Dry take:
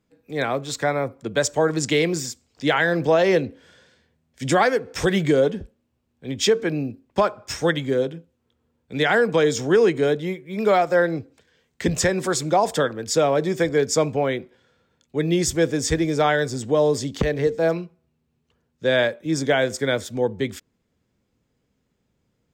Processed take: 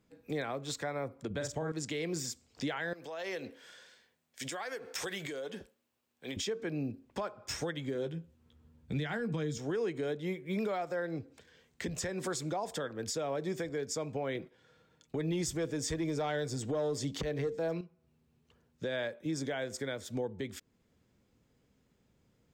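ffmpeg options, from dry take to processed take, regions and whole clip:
-filter_complex "[0:a]asettb=1/sr,asplit=3[a][b][c];[a]atrim=end=1.304[d];[b]atrim=start=1.3:end=1.72,asetpts=PTS-STARTPTS,afade=t=in:d=0.004:c=qsin,afade=t=out:st=0.416:d=0.004:c=qsin,bass=f=250:g=8,treble=f=4k:g=-3,asplit=2[e][f];[f]adelay=45,volume=-5.5dB[g];[e][g]amix=inputs=2:normalize=0,atrim=end_sample=18522[h];[c]atrim=start=1.716[i];[d][h]acrossfade=d=0.004:c1=hsin:c2=qsin[j];[j][i]acrossfade=d=0.004:c1=qsin:c2=hsin,asettb=1/sr,asplit=3[k][l][m];[k]atrim=end=2.934[n];[l]atrim=start=2.93:end=6.37,asetpts=PTS-STARTPTS,afade=t=in:d=0.004:c=qsin,afade=t=out:st=3.436:d=0.004:c=qsin,highpass=f=940:p=1,acompressor=threshold=-35dB:ratio=6:attack=3.2:release=140:knee=1:detection=peak,highshelf=f=11k:g=7[o];[m]atrim=start=6.366[p];[n][o]acrossfade=d=0.004:c1=hsin:c2=qsin[q];[q][p]acrossfade=d=0.004:c1=qsin:c2=hsin,asettb=1/sr,asplit=3[r][s][t];[r]atrim=end=7.944[u];[s]atrim=start=7.94:end=9.58,asetpts=PTS-STARTPTS,afade=t=in:d=0.004:c=qsin,afade=t=out:st=1.636:d=0.004:c=qsin,asubboost=boost=9.5:cutoff=230,asplit=2[v][w];[w]adelay=13,volume=-7.5dB[x];[v][x]amix=inputs=2:normalize=0,atrim=end_sample=72324[y];[t]atrim=start=9.576[z];[u][y]acrossfade=d=0.004:c1=hsin:c2=qsin[aa];[aa][z]acrossfade=d=0.004:c1=qsin:c2=hsin,asettb=1/sr,asplit=3[ab][ac][ad];[ab]atrim=end=14.354[ae];[ac]atrim=start=14.35:end=17.81,asetpts=PTS-STARTPTS,afade=t=in:d=0.004:c=qsin,afade=t=out:st=3.456:d=0.004:c=qsin,agate=range=-9dB:threshold=-49dB:ratio=16:release=100:detection=peak,aecho=1:1:6.4:0.35,atrim=end_sample=152586,acontrast=85[af];[ad]atrim=start=17.806[ag];[ae][af]acrossfade=d=0.004:c1=hsin:c2=qsin[ah];[ah][ag]acrossfade=d=0.004:c1=qsin:c2=hsin,acompressor=threshold=-32dB:ratio=2,alimiter=level_in=2.5dB:limit=-24dB:level=0:latency=1:release=428,volume=-2.5dB"

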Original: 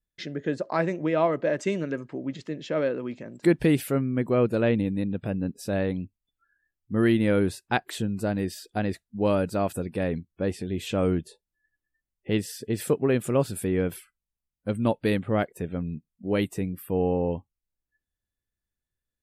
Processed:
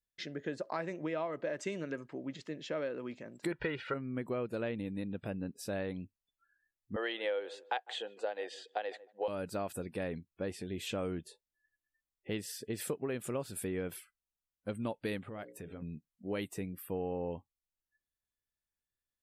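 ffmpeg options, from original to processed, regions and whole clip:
-filter_complex "[0:a]asettb=1/sr,asplit=3[a][b][c];[a]atrim=end=3.524[d];[b]atrim=start=3.52:end=3.94,asetpts=PTS-STARTPTS,afade=t=in:d=0.004:c=qsin,afade=t=out:st=0.416:d=0.004:c=qsin,lowpass=f=4.1k:w=0.5412,lowpass=f=4.1k:w=1.3066,equalizer=f=1.4k:t=o:w=1.2:g=12,aecho=1:1:2.1:0.65,atrim=end_sample=18522[e];[c]atrim=start=3.936[f];[d][e]acrossfade=d=0.004:c1=hsin:c2=qsin[g];[g][f]acrossfade=d=0.004:c1=qsin:c2=hsin,asettb=1/sr,asplit=3[h][i][j];[h]atrim=end=6.964[k];[i]atrim=start=6.96:end=9.28,asetpts=PTS-STARTPTS,afade=t=in:d=0.004:c=qsin,afade=t=out:st=2.316:d=0.004:c=qsin,highpass=f=440:w=0.5412,highpass=f=440:w=1.3066,equalizer=f=500:t=q:w=4:g=10,equalizer=f=800:t=q:w=4:g=9,equalizer=f=1.8k:t=q:w=4:g=4,equalizer=f=3.2k:t=q:w=4:g=10,equalizer=f=5.4k:t=q:w=4:g=-9,lowpass=f=6.4k:w=0.5412,lowpass=f=6.4k:w=1.3066,asplit=2[l][m];[m]adelay=152,lowpass=f=820:p=1,volume=-20dB,asplit=2[n][o];[o]adelay=152,lowpass=f=820:p=1,volume=0.22[p];[l][n][p]amix=inputs=3:normalize=0,atrim=end_sample=102312[q];[j]atrim=start=9.276[r];[k][q]acrossfade=d=0.004:c1=hsin:c2=qsin[s];[s][r]acrossfade=d=0.004:c1=qsin:c2=hsin,asettb=1/sr,asplit=3[t][u][v];[t]atrim=end=15.284[w];[u]atrim=start=15.28:end=15.82,asetpts=PTS-STARTPTS,afade=t=in:d=0.004:c=qsin,afade=t=out:st=0.536:d=0.004:c=qsin,bandreject=f=60:t=h:w=6,bandreject=f=120:t=h:w=6,bandreject=f=180:t=h:w=6,bandreject=f=240:t=h:w=6,bandreject=f=300:t=h:w=6,bandreject=f=360:t=h:w=6,bandreject=f=420:t=h:w=6,bandreject=f=480:t=h:w=6,bandreject=f=540:t=h:w=6,acompressor=threshold=-31dB:ratio=10:attack=3.2:release=140:knee=1:detection=peak[x];[v]atrim=start=15.816[y];[w][x]acrossfade=d=0.004:c1=hsin:c2=qsin[z];[z][y]acrossfade=d=0.004:c1=qsin:c2=hsin,lowshelf=f=360:g=-7,acompressor=threshold=-28dB:ratio=6,volume=-4.5dB"

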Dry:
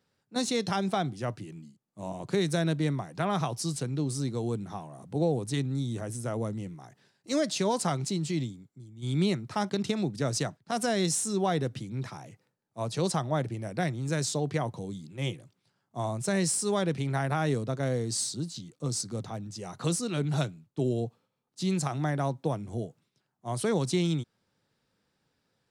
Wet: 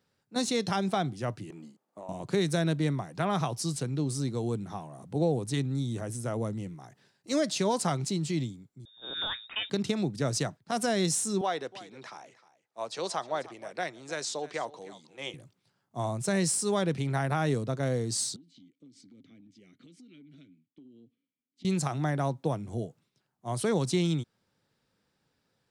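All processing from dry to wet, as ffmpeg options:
-filter_complex "[0:a]asettb=1/sr,asplit=3[a][b][c];[a]atrim=end=1.504[d];[b]atrim=start=1.5:end=2.09,asetpts=PTS-STARTPTS,afade=t=in:d=0.004:c=qsin,afade=t=out:st=0.586:d=0.004:c=qsin,highpass=240,equalizer=f=700:t=o:w=2.8:g=14,acompressor=threshold=-41dB:ratio=5:attack=3.2:release=140:knee=1:detection=peak[e];[c]atrim=start=2.086[f];[d][e]acrossfade=d=0.004:c1=hsin:c2=qsin[g];[g][f]acrossfade=d=0.004:c1=qsin:c2=hsin,asettb=1/sr,asplit=3[h][i][j];[h]atrim=end=8.854[k];[i]atrim=start=8.85:end=9.7,asetpts=PTS-STARTPTS,afade=t=in:d=0.004:c=qsin,afade=t=out:st=0.846:d=0.004:c=qsin,aeval=exprs='if(lt(val(0),0),0.708*val(0),val(0))':c=same,tiltshelf=f=1.1k:g=-9,lowpass=f=3.2k:t=q:w=0.5098,lowpass=f=3.2k:t=q:w=0.6013,lowpass=f=3.2k:t=q:w=0.9,lowpass=f=3.2k:t=q:w=2.563,afreqshift=-3800[l];[j]atrim=start=9.696[m];[k][l]acrossfade=d=0.004:c1=hsin:c2=qsin[n];[n][m]acrossfade=d=0.004:c1=qsin:c2=hsin,asettb=1/sr,asplit=3[o][p][q];[o]atrim=end=11.414[r];[p]atrim=start=11.41:end=15.34,asetpts=PTS-STARTPTS,afade=t=in:d=0.004:c=qsin,afade=t=out:st=3.926:d=0.004:c=qsin,highpass=500,lowpass=6.9k,aecho=1:1:309:0.133,atrim=end_sample=173313[s];[q]atrim=start=15.336[t];[r][s]acrossfade=d=0.004:c1=hsin:c2=qsin[u];[u][t]acrossfade=d=0.004:c1=qsin:c2=hsin,asettb=1/sr,asplit=3[v][w][x];[v]atrim=end=18.364[y];[w]atrim=start=18.36:end=21.65,asetpts=PTS-STARTPTS,afade=t=in:d=0.004:c=qsin,afade=t=out:st=3.286:d=0.004:c=qsin,asplit=3[z][aa][ab];[z]bandpass=f=270:t=q:w=8,volume=0dB[ac];[aa]bandpass=f=2.29k:t=q:w=8,volume=-6dB[ad];[ab]bandpass=f=3.01k:t=q:w=8,volume=-9dB[ae];[ac][ad][ae]amix=inputs=3:normalize=0,acompressor=threshold=-50dB:ratio=12:attack=3.2:release=140:knee=1:detection=peak[af];[x]atrim=start=21.646[ag];[y][af]acrossfade=d=0.004:c1=hsin:c2=qsin[ah];[ah][ag]acrossfade=d=0.004:c1=qsin:c2=hsin"

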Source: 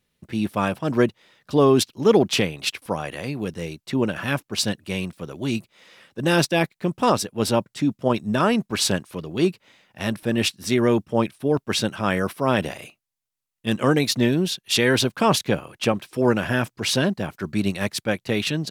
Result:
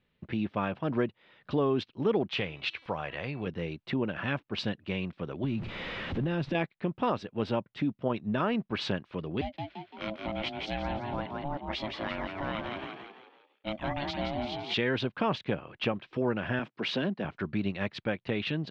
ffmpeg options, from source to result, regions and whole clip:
-filter_complex "[0:a]asettb=1/sr,asplit=3[a][b][c];[a]atrim=end=2.294[d];[b]atrim=start=2.29:end=3.47,asetpts=PTS-STARTPTS,afade=t=in:d=0.004:c=qsin,afade=t=out:st=1.176:d=0.004:c=qsin,equalizer=f=260:t=o:w=1.6:g=-7.5,bandreject=f=328.7:t=h:w=4,bandreject=f=657.4:t=h:w=4,bandreject=f=986.1:t=h:w=4,bandreject=f=1.3148k:t=h:w=4,bandreject=f=1.6435k:t=h:w=4,bandreject=f=1.9722k:t=h:w=4,bandreject=f=2.3009k:t=h:w=4,bandreject=f=2.6296k:t=h:w=4,bandreject=f=2.9583k:t=h:w=4,bandreject=f=3.287k:t=h:w=4,bandreject=f=3.6157k:t=h:w=4,bandreject=f=3.9444k:t=h:w=4,bandreject=f=4.2731k:t=h:w=4,bandreject=f=4.6018k:t=h:w=4,bandreject=f=4.9305k:t=h:w=4,bandreject=f=5.2592k:t=h:w=4,bandreject=f=5.5879k:t=h:w=4,bandreject=f=5.9166k:t=h:w=4,bandreject=f=6.2453k:t=h:w=4,bandreject=f=6.574k:t=h:w=4,bandreject=f=6.9027k:t=h:w=4,bandreject=f=7.2314k:t=h:w=4,bandreject=f=7.5601k:t=h:w=4,bandreject=f=7.8888k:t=h:w=4,bandreject=f=8.2175k:t=h:w=4,bandreject=f=8.5462k:t=h:w=4,bandreject=f=8.8749k:t=h:w=4,bandreject=f=9.2036k:t=h:w=4,bandreject=f=9.5323k:t=h:w=4,bandreject=f=9.861k:t=h:w=4,bandreject=f=10.1897k:t=h:w=4,bandreject=f=10.5184k:t=h:w=4,bandreject=f=10.8471k:t=h:w=4,bandreject=f=11.1758k:t=h:w=4,bandreject=f=11.5045k:t=h:w=4[e];[c]atrim=start=3.466[f];[d][e]acrossfade=d=0.004:c1=hsin:c2=qsin[g];[g][f]acrossfade=d=0.004:c1=qsin:c2=hsin,asettb=1/sr,asplit=3[h][i][j];[h]atrim=end=5.444[k];[i]atrim=start=5.44:end=6.55,asetpts=PTS-STARTPTS,afade=t=in:d=0.004:c=qsin,afade=t=out:st=1.106:d=0.004:c=qsin,aeval=exprs='val(0)+0.5*0.0237*sgn(val(0))':c=same,lowshelf=f=290:g=11.5,acompressor=threshold=-21dB:ratio=4:attack=3.2:release=140:knee=1:detection=peak[l];[j]atrim=start=6.546[m];[k][l]acrossfade=d=0.004:c1=hsin:c2=qsin[n];[n][m]acrossfade=d=0.004:c1=qsin:c2=hsin,asettb=1/sr,asplit=3[o][p][q];[o]atrim=end=9.414[r];[p]atrim=start=9.41:end=14.74,asetpts=PTS-STARTPTS,afade=t=in:d=0.004:c=qsin,afade=t=out:st=5.326:d=0.004:c=qsin,equalizer=f=500:w=0.35:g=-9,aeval=exprs='val(0)*sin(2*PI*430*n/s)':c=same,asplit=6[s][t][u][v][w][x];[t]adelay=170,afreqshift=52,volume=-6dB[y];[u]adelay=340,afreqshift=104,volume=-12.9dB[z];[v]adelay=510,afreqshift=156,volume=-19.9dB[aa];[w]adelay=680,afreqshift=208,volume=-26.8dB[ab];[x]adelay=850,afreqshift=260,volume=-33.7dB[ac];[s][y][z][aa][ab][ac]amix=inputs=6:normalize=0,atrim=end_sample=235053[ad];[q]atrim=start=14.736[ae];[r][ad]acrossfade=d=0.004:c1=hsin:c2=qsin[af];[af][ae]acrossfade=d=0.004:c1=qsin:c2=hsin,asettb=1/sr,asplit=3[ag][ah][ai];[ag]atrim=end=16.594[aj];[ah]atrim=start=16.59:end=17.25,asetpts=PTS-STARTPTS,afade=t=in:d=0.004:c=qsin,afade=t=out:st=0.656:d=0.004:c=qsin,highpass=f=160:w=0.5412,highpass=f=160:w=1.3066,acrossover=split=390|3000[ak][al][am];[al]acompressor=threshold=-27dB:ratio=2:attack=3.2:release=140:knee=2.83:detection=peak[an];[ak][an][am]amix=inputs=3:normalize=0[ao];[ai]atrim=start=17.246[ap];[aj][ao]acrossfade=d=0.004:c1=hsin:c2=qsin[aq];[aq][ap]acrossfade=d=0.004:c1=qsin:c2=hsin,lowpass=f=3.4k:w=0.5412,lowpass=f=3.4k:w=1.3066,acompressor=threshold=-33dB:ratio=2"

